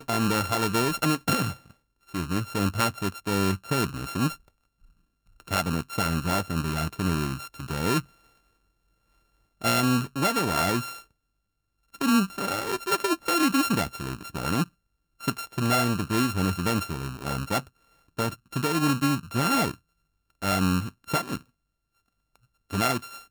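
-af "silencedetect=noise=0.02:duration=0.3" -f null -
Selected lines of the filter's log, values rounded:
silence_start: 1.53
silence_end: 2.14 | silence_duration: 0.61
silence_start: 4.34
silence_end: 5.48 | silence_duration: 1.14
silence_start: 8.00
silence_end: 9.62 | silence_duration: 1.61
silence_start: 10.98
silence_end: 11.95 | silence_duration: 0.96
silence_start: 14.64
silence_end: 15.23 | silence_duration: 0.59
silence_start: 17.67
silence_end: 18.18 | silence_duration: 0.52
silence_start: 19.74
silence_end: 20.42 | silence_duration: 0.68
silence_start: 21.37
silence_end: 22.71 | silence_duration: 1.34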